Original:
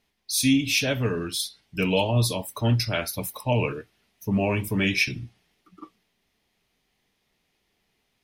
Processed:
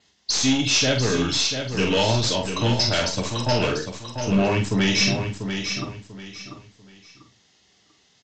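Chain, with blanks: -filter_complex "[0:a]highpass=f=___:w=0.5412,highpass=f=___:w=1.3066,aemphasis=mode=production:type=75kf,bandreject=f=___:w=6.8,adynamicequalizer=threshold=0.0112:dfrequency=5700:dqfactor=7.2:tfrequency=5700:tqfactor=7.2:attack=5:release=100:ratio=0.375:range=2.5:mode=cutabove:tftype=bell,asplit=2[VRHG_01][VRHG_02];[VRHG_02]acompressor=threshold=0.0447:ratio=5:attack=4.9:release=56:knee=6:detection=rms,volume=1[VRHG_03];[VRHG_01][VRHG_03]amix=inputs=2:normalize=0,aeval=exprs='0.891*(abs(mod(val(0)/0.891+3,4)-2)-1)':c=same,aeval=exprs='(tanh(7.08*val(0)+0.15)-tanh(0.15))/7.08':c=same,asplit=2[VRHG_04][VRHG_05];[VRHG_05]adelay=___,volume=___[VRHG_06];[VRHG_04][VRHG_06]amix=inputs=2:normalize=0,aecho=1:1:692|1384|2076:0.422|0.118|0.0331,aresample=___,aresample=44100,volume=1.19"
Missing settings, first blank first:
60, 60, 2400, 46, 0.501, 16000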